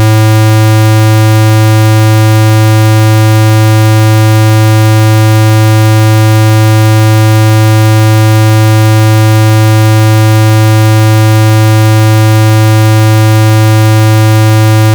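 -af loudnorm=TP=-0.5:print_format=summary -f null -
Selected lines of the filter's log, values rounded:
Input Integrated:     -5.5 LUFS
Input True Peak:      -2.1 dBTP
Input LRA:             0.0 LU
Input Threshold:     -15.5 LUFS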